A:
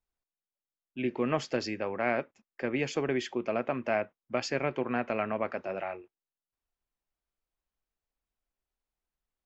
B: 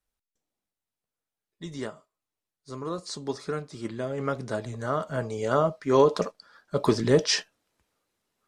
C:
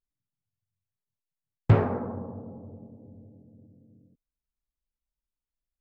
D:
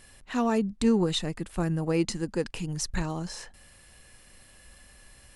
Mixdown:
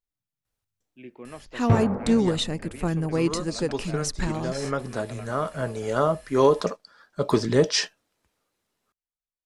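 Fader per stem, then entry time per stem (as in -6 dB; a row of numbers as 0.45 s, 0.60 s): -12.5 dB, +1.0 dB, -1.5 dB, +2.0 dB; 0.00 s, 0.45 s, 0.00 s, 1.25 s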